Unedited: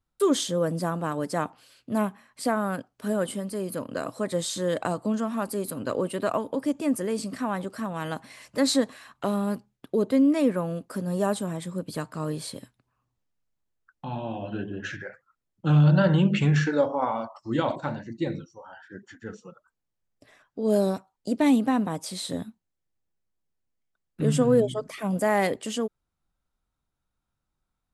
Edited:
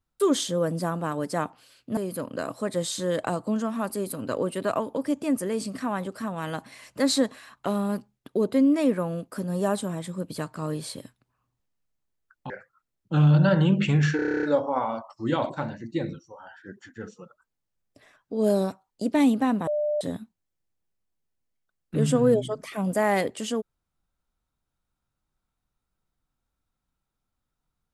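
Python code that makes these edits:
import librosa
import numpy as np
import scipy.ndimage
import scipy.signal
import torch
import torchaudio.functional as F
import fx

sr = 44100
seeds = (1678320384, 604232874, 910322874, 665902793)

y = fx.edit(x, sr, fx.cut(start_s=1.97, length_s=1.58),
    fx.cut(start_s=14.08, length_s=0.95),
    fx.stutter(start_s=16.69, slice_s=0.03, count=10),
    fx.bleep(start_s=21.93, length_s=0.34, hz=597.0, db=-22.5), tone=tone)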